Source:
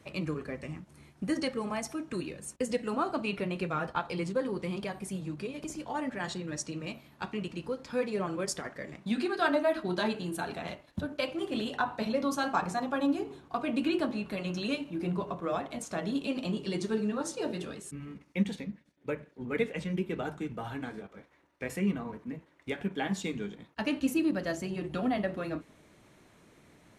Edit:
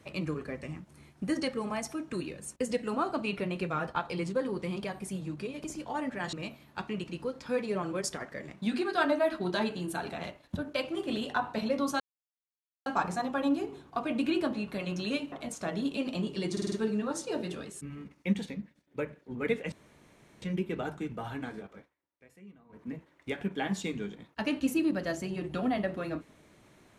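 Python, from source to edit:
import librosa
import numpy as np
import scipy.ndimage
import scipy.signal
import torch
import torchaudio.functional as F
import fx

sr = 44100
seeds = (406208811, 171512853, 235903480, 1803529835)

y = fx.edit(x, sr, fx.cut(start_s=6.33, length_s=0.44),
    fx.insert_silence(at_s=12.44, length_s=0.86),
    fx.cut(start_s=14.9, length_s=0.72),
    fx.stutter(start_s=16.82, slice_s=0.05, count=5),
    fx.insert_room_tone(at_s=19.82, length_s=0.7),
    fx.fade_down_up(start_s=21.16, length_s=1.11, db=-22.5, fade_s=0.18), tone=tone)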